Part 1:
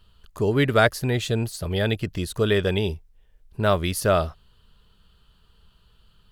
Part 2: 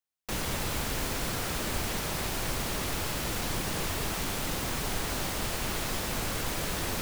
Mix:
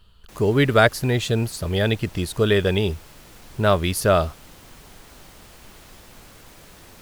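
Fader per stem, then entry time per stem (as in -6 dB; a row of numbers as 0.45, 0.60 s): +2.5, -14.5 dB; 0.00, 0.00 s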